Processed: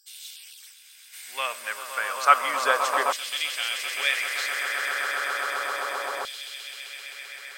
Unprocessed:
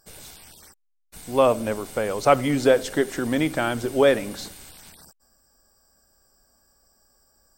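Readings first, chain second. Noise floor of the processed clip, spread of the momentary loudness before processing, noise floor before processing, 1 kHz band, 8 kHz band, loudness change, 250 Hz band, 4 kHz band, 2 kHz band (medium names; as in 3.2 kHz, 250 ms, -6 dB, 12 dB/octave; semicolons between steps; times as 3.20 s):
-50 dBFS, 8 LU, -69 dBFS, +3.0 dB, +3.5 dB, -3.5 dB, -25.0 dB, +7.0 dB, +6.5 dB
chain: echo with a slow build-up 130 ms, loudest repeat 8, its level -11.5 dB; LFO high-pass saw down 0.32 Hz 970–3400 Hz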